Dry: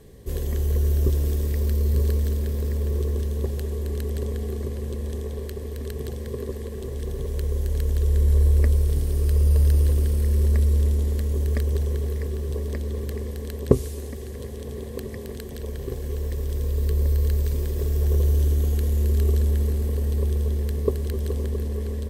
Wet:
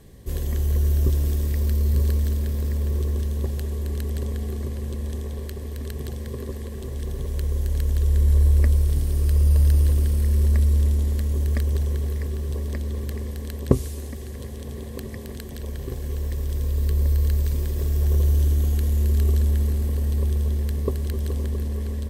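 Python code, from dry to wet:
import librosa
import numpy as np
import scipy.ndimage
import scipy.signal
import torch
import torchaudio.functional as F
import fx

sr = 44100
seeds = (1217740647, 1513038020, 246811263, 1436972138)

y = fx.peak_eq(x, sr, hz=440.0, db=-7.5, octaves=0.45)
y = y * 10.0 ** (1.0 / 20.0)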